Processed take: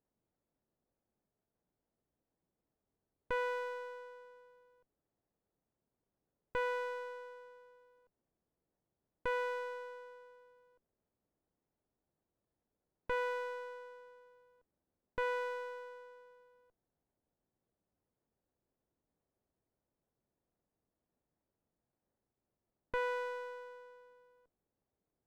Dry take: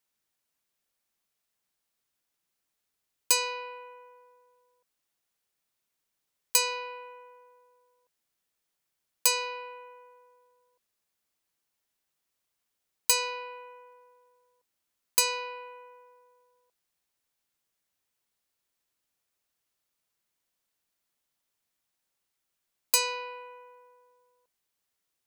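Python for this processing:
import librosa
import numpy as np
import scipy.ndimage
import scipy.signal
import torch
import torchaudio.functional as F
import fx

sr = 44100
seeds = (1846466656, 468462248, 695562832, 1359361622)

y = scipy.ndimage.gaussian_filter1d(x, 10.0, mode='constant')
y = fx.tube_stage(y, sr, drive_db=36.0, bias=0.3)
y = fx.running_max(y, sr, window=17)
y = F.gain(torch.from_numpy(y), 10.0).numpy()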